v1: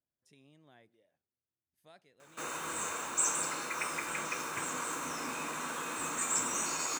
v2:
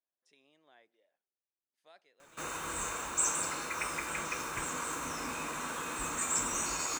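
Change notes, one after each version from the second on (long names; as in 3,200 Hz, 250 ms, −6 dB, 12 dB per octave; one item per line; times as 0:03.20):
speech: add band-pass filter 470–6,500 Hz
background: remove high-pass filter 140 Hz 12 dB per octave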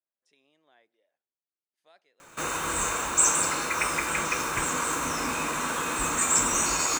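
background +9.0 dB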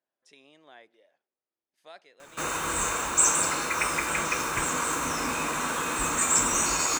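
speech +11.5 dB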